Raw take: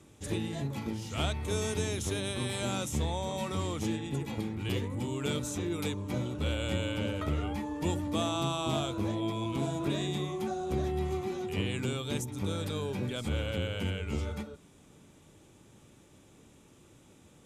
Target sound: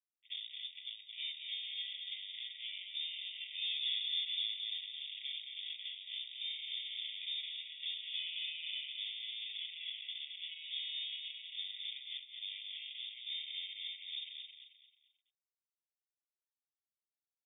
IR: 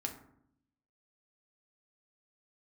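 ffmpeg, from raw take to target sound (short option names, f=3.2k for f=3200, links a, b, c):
-filter_complex "[0:a]asettb=1/sr,asplit=3[a][b][c];[a]atrim=end=3.614[d];[b]atrim=start=3.61:end=4.54,asetpts=PTS-STARTPTS,afade=t=in:d=0.004:c=qsin,afade=t=out:st=0.926:d=0.004:c=qsin,acontrast=89[e];[c]atrim=start=4.536[f];[d][e]acrossfade=d=0.004:c1=hsin:c2=qsin[g];[g][f]acrossfade=d=0.004:c1=qsin:c2=hsin,asettb=1/sr,asplit=3[h][i][j];[h]atrim=end=9.574[k];[i]atrim=start=9.57:end=10.08,asetpts=PTS-STARTPTS,afade=t=in:d=0.004:c=qsin,afade=t=out:st=0.506:d=0.004:c=qsin,highpass=f=180:w=0.5412,highpass=f=180:w=1.3066[l];[j]atrim=start=10.076[m];[k][l]acrossfade=d=0.004:c1=hsin:c2=qsin[n];[n][m]acrossfade=d=0.004:c1=qsin:c2=hsin,asoftclip=type=tanh:threshold=-31.5dB,acrusher=bits=4:mix=0:aa=0.5,aecho=1:1:219|438|657|876:0.531|0.191|0.0688|0.0248,lowpass=f=3.1k:t=q:w=0.5098,lowpass=f=3.1k:t=q:w=0.6013,lowpass=f=3.1k:t=q:w=0.9,lowpass=f=3.1k:t=q:w=2.563,afreqshift=-3700,afftfilt=real='re*eq(mod(floor(b*sr/1024/1900),2),1)':imag='im*eq(mod(floor(b*sr/1024/1900),2),1)':win_size=1024:overlap=0.75,volume=4.5dB"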